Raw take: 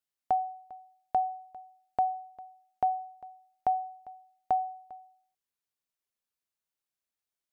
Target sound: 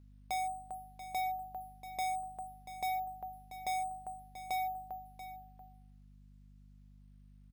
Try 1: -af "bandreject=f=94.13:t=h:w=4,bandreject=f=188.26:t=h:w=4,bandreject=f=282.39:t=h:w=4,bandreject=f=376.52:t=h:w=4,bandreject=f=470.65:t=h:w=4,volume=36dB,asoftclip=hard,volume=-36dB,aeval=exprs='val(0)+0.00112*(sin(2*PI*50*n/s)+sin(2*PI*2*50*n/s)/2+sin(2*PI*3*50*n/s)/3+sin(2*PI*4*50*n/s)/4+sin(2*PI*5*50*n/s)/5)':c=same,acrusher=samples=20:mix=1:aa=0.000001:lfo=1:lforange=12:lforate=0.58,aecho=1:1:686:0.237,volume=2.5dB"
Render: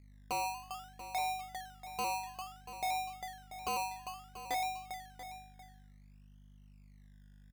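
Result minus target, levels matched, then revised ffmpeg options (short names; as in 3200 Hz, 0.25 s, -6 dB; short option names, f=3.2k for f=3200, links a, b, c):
decimation with a swept rate: distortion +18 dB
-af "bandreject=f=94.13:t=h:w=4,bandreject=f=188.26:t=h:w=4,bandreject=f=282.39:t=h:w=4,bandreject=f=376.52:t=h:w=4,bandreject=f=470.65:t=h:w=4,volume=36dB,asoftclip=hard,volume=-36dB,aeval=exprs='val(0)+0.00112*(sin(2*PI*50*n/s)+sin(2*PI*2*50*n/s)/2+sin(2*PI*3*50*n/s)/3+sin(2*PI*4*50*n/s)/4+sin(2*PI*5*50*n/s)/5)':c=same,acrusher=samples=4:mix=1:aa=0.000001:lfo=1:lforange=2.4:lforate=0.58,aecho=1:1:686:0.237,volume=2.5dB"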